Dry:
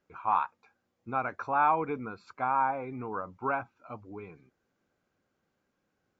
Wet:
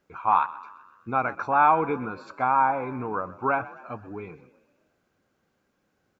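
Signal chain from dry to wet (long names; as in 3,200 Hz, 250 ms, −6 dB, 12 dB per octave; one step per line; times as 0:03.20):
echo with shifted repeats 128 ms, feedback 54%, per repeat +41 Hz, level −18 dB
level +6 dB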